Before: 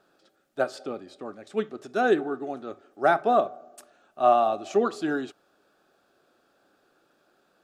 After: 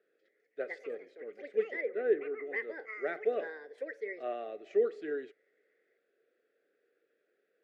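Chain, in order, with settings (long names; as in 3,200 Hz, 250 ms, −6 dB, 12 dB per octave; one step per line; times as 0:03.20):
delay with pitch and tempo change per echo 253 ms, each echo +5 semitones, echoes 2, each echo −6 dB
pair of resonant band-passes 950 Hz, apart 2.1 octaves
0:01.81–0:02.46: high-frequency loss of the air 380 metres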